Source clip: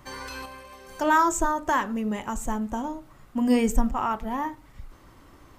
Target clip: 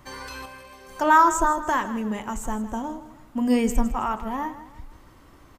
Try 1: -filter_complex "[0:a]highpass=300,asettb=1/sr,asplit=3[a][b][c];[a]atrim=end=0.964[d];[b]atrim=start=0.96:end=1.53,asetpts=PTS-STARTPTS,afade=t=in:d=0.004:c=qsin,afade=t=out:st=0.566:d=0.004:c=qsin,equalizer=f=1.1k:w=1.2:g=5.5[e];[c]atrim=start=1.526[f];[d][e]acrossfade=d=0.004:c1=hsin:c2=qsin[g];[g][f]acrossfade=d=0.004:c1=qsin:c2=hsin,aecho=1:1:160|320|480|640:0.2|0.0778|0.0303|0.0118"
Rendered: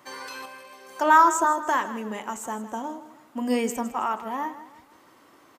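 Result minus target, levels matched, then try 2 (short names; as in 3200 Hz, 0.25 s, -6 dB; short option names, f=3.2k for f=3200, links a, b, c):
250 Hz band -4.5 dB
-filter_complex "[0:a]asettb=1/sr,asplit=3[a][b][c];[a]atrim=end=0.964[d];[b]atrim=start=0.96:end=1.53,asetpts=PTS-STARTPTS,afade=t=in:d=0.004:c=qsin,afade=t=out:st=0.566:d=0.004:c=qsin,equalizer=f=1.1k:w=1.2:g=5.5[e];[c]atrim=start=1.526[f];[d][e]acrossfade=d=0.004:c1=hsin:c2=qsin[g];[g][f]acrossfade=d=0.004:c1=qsin:c2=hsin,aecho=1:1:160|320|480|640:0.2|0.0778|0.0303|0.0118"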